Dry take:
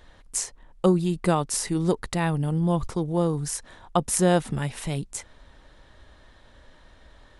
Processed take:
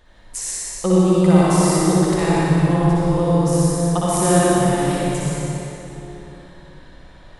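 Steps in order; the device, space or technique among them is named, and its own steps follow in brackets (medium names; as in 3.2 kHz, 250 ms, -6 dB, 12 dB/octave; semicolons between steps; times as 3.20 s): tunnel (flutter echo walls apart 10.2 m, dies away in 0.84 s; reverberation RT60 3.5 s, pre-delay 65 ms, DRR -6.5 dB); trim -2 dB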